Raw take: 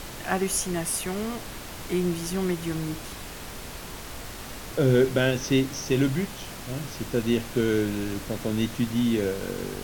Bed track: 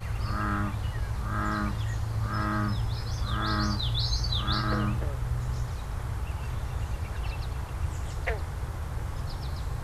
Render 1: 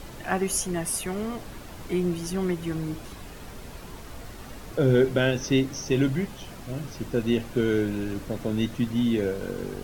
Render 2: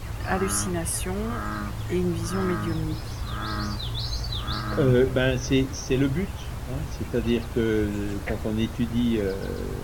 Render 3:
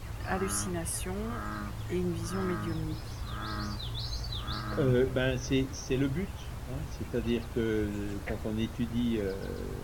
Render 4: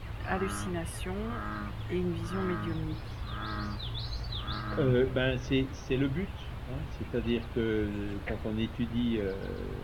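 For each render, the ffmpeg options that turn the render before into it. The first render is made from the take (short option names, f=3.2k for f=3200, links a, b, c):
-af "afftdn=nr=8:nf=-39"
-filter_complex "[1:a]volume=-2dB[a];[0:a][a]amix=inputs=2:normalize=0"
-af "volume=-6.5dB"
-af "highshelf=f=4.5k:t=q:w=1.5:g=-9"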